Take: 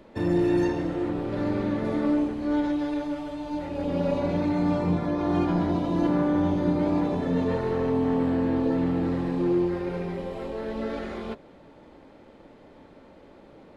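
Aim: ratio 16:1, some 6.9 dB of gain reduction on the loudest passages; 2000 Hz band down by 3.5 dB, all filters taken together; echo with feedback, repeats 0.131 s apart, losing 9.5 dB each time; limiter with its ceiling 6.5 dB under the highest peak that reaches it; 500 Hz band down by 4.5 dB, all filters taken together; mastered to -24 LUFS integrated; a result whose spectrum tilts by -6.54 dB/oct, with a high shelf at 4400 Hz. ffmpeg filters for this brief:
-af "equalizer=f=500:t=o:g=-6,equalizer=f=2k:t=o:g=-3,highshelf=f=4.4k:g=-6,acompressor=threshold=-28dB:ratio=16,alimiter=level_in=4dB:limit=-24dB:level=0:latency=1,volume=-4dB,aecho=1:1:131|262|393|524:0.335|0.111|0.0365|0.012,volume=12dB"

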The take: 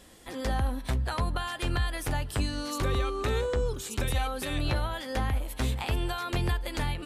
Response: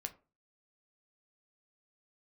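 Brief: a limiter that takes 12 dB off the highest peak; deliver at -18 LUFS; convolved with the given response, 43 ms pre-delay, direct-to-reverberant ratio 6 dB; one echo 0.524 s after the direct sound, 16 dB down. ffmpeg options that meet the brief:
-filter_complex "[0:a]alimiter=level_in=6.5dB:limit=-24dB:level=0:latency=1,volume=-6.5dB,aecho=1:1:524:0.158,asplit=2[a][b];[1:a]atrim=start_sample=2205,adelay=43[c];[b][c]afir=irnorm=-1:irlink=0,volume=-3.5dB[d];[a][d]amix=inputs=2:normalize=0,volume=20dB"

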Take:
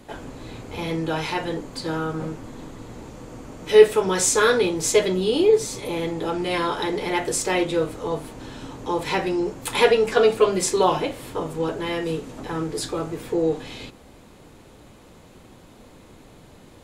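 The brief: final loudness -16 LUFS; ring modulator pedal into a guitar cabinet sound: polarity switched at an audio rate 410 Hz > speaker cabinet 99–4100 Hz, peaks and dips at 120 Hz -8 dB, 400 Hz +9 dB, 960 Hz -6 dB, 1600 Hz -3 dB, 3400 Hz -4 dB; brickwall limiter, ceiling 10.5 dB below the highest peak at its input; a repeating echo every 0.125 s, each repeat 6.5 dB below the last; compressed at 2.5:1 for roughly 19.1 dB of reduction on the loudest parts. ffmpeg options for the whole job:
-af "acompressor=threshold=-37dB:ratio=2.5,alimiter=level_in=5dB:limit=-24dB:level=0:latency=1,volume=-5dB,aecho=1:1:125|250|375|500|625|750:0.473|0.222|0.105|0.0491|0.0231|0.0109,aeval=exprs='val(0)*sgn(sin(2*PI*410*n/s))':c=same,highpass=99,equalizer=f=120:t=q:w=4:g=-8,equalizer=f=400:t=q:w=4:g=9,equalizer=f=960:t=q:w=4:g=-6,equalizer=f=1.6k:t=q:w=4:g=-3,equalizer=f=3.4k:t=q:w=4:g=-4,lowpass=f=4.1k:w=0.5412,lowpass=f=4.1k:w=1.3066,volume=23.5dB"

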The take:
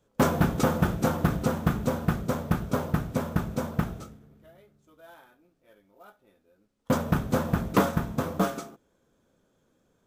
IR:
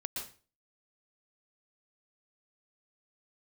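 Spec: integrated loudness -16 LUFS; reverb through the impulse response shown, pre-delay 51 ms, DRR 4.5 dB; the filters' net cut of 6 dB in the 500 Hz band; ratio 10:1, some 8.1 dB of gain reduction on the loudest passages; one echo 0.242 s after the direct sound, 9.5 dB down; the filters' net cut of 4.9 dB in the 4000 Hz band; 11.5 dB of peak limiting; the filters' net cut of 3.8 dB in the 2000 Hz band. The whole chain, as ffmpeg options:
-filter_complex "[0:a]equalizer=f=500:t=o:g=-7,equalizer=f=2k:t=o:g=-4,equalizer=f=4k:t=o:g=-5,acompressor=threshold=-28dB:ratio=10,alimiter=level_in=6dB:limit=-24dB:level=0:latency=1,volume=-6dB,aecho=1:1:242:0.335,asplit=2[a][b];[1:a]atrim=start_sample=2205,adelay=51[c];[b][c]afir=irnorm=-1:irlink=0,volume=-5dB[d];[a][d]amix=inputs=2:normalize=0,volume=22dB"

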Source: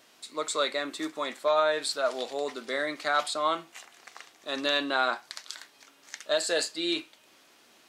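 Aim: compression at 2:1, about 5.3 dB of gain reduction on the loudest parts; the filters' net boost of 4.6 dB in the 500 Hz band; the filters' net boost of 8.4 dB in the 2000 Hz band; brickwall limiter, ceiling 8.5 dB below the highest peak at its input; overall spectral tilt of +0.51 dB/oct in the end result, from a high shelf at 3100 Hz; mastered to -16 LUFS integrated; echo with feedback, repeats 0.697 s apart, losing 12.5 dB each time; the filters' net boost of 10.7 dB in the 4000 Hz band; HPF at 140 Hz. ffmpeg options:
-af "highpass=140,equalizer=f=500:t=o:g=5,equalizer=f=2k:t=o:g=7.5,highshelf=f=3.1k:g=6.5,equalizer=f=4k:t=o:g=5.5,acompressor=threshold=-24dB:ratio=2,alimiter=limit=-15.5dB:level=0:latency=1,aecho=1:1:697|1394|2091:0.237|0.0569|0.0137,volume=11.5dB"

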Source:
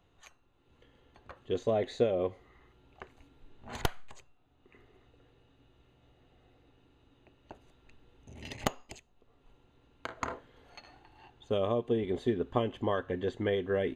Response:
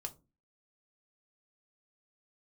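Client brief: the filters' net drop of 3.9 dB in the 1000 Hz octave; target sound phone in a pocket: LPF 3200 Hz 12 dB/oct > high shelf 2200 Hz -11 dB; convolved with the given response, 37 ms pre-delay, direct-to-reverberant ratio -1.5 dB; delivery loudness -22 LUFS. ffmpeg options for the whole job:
-filter_complex "[0:a]equalizer=f=1k:t=o:g=-3,asplit=2[a][b];[1:a]atrim=start_sample=2205,adelay=37[c];[b][c]afir=irnorm=-1:irlink=0,volume=4dB[d];[a][d]amix=inputs=2:normalize=0,lowpass=3.2k,highshelf=f=2.2k:g=-11,volume=8.5dB"

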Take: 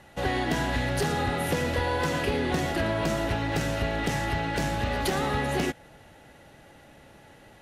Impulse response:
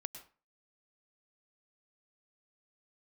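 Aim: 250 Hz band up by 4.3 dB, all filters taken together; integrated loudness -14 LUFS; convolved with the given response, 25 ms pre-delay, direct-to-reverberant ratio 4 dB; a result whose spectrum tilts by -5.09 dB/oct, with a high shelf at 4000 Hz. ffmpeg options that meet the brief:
-filter_complex "[0:a]equalizer=f=250:t=o:g=5.5,highshelf=f=4k:g=4.5,asplit=2[a][b];[1:a]atrim=start_sample=2205,adelay=25[c];[b][c]afir=irnorm=-1:irlink=0,volume=-1.5dB[d];[a][d]amix=inputs=2:normalize=0,volume=10dB"

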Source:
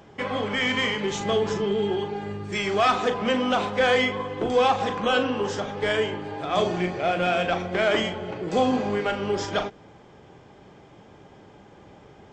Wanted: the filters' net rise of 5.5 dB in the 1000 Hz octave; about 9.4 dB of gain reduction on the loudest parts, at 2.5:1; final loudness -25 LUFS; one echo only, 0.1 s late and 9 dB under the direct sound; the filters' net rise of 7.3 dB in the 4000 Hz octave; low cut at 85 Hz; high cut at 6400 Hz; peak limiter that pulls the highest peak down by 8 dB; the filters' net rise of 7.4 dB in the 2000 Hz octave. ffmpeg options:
-af "highpass=85,lowpass=6.4k,equalizer=f=1k:t=o:g=6,equalizer=f=2k:t=o:g=5.5,equalizer=f=4k:t=o:g=7.5,acompressor=threshold=-25dB:ratio=2.5,alimiter=limit=-20dB:level=0:latency=1,aecho=1:1:100:0.355,volume=3dB"

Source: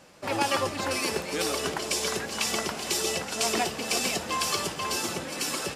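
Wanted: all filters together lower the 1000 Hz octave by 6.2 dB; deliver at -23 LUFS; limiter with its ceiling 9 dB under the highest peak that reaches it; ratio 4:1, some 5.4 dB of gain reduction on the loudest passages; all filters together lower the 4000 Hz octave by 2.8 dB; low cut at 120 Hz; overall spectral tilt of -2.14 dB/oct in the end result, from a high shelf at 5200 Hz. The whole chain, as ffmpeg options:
-af "highpass=120,equalizer=f=1k:t=o:g=-8,equalizer=f=4k:t=o:g=-8.5,highshelf=f=5.2k:g=8.5,acompressor=threshold=-29dB:ratio=4,volume=10dB,alimiter=limit=-13.5dB:level=0:latency=1"

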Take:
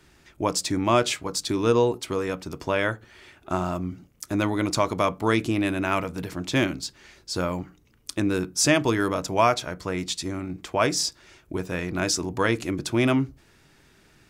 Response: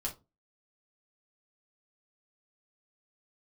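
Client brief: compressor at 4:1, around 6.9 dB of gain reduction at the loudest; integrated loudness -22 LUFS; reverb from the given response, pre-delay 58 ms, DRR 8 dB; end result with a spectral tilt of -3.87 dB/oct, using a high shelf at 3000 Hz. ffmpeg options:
-filter_complex "[0:a]highshelf=f=3k:g=3.5,acompressor=threshold=-23dB:ratio=4,asplit=2[a][b];[1:a]atrim=start_sample=2205,adelay=58[c];[b][c]afir=irnorm=-1:irlink=0,volume=-9dB[d];[a][d]amix=inputs=2:normalize=0,volume=6dB"

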